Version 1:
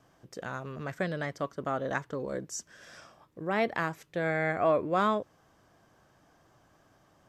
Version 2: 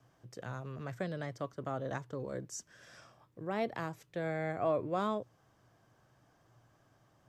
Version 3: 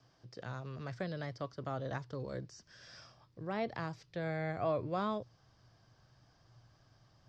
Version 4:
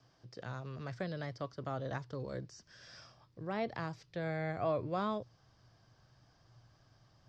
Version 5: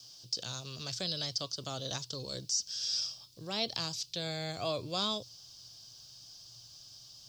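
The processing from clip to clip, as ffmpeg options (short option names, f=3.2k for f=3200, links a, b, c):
-filter_complex "[0:a]equalizer=f=120:w=6.2:g=13,acrossover=split=280|1200|2600[a][b][c][d];[c]acompressor=threshold=-47dB:ratio=6[e];[a][b][e][d]amix=inputs=4:normalize=0,volume=-5.5dB"
-filter_complex "[0:a]acrossover=split=2800[a][b];[b]acompressor=threshold=-59dB:ratio=4:attack=1:release=60[c];[a][c]amix=inputs=2:normalize=0,lowpass=f=4.9k:t=q:w=4.2,asubboost=boost=2.5:cutoff=160,volume=-1.5dB"
-af anull
-af "aexciter=amount=14.2:drive=7:freq=3k,volume=-2dB"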